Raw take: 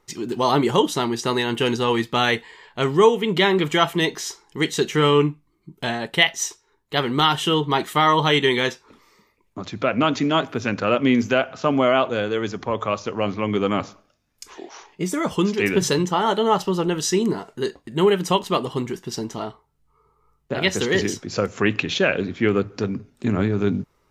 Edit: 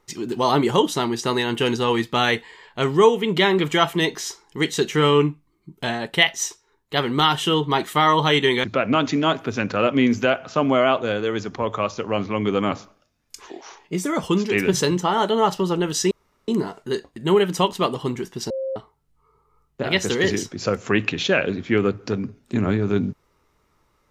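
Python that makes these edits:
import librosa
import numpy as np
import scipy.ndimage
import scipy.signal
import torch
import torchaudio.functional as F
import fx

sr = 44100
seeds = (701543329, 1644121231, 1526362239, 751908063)

y = fx.edit(x, sr, fx.cut(start_s=8.64, length_s=1.08),
    fx.insert_room_tone(at_s=17.19, length_s=0.37),
    fx.bleep(start_s=19.21, length_s=0.26, hz=532.0, db=-23.5), tone=tone)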